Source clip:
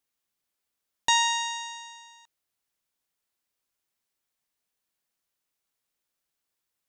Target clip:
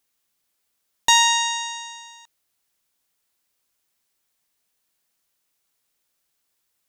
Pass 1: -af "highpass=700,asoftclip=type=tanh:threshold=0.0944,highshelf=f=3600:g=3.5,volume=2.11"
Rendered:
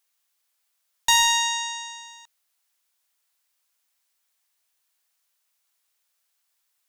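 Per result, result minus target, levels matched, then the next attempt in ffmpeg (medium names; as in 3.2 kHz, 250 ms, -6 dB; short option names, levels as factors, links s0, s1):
saturation: distortion +9 dB; 500 Hz band -5.5 dB
-af "highpass=700,asoftclip=type=tanh:threshold=0.237,highshelf=f=3600:g=3.5,volume=2.11"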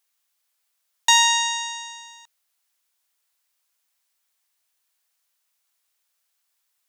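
500 Hz band -5.5 dB
-af "asoftclip=type=tanh:threshold=0.237,highshelf=f=3600:g=3.5,volume=2.11"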